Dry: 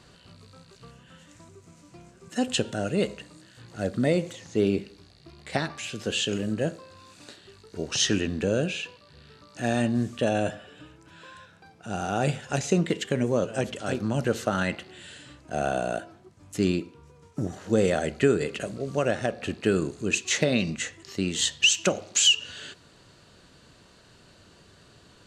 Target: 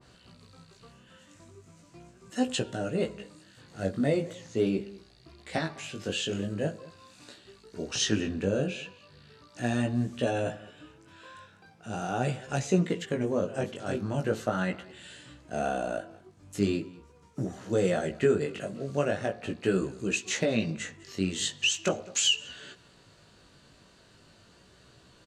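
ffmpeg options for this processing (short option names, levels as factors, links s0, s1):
-filter_complex "[0:a]asplit=2[s0][s1];[s1]adelay=204.1,volume=0.0891,highshelf=f=4000:g=-4.59[s2];[s0][s2]amix=inputs=2:normalize=0,flanger=delay=15.5:depth=5.7:speed=0.4,adynamicequalizer=threshold=0.00562:dfrequency=1900:dqfactor=0.7:tfrequency=1900:tqfactor=0.7:attack=5:release=100:ratio=0.375:range=3:mode=cutabove:tftype=highshelf"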